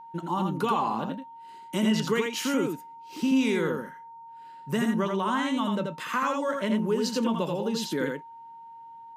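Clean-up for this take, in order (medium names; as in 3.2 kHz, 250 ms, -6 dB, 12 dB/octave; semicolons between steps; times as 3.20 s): band-stop 920 Hz, Q 30; inverse comb 83 ms -4 dB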